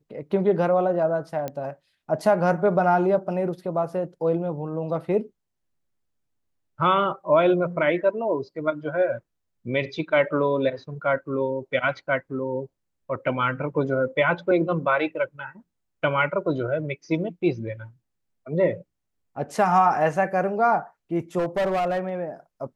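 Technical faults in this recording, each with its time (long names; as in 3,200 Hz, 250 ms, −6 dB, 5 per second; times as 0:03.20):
0:01.48: click −17 dBFS
0:21.38–0:22.09: clipping −20 dBFS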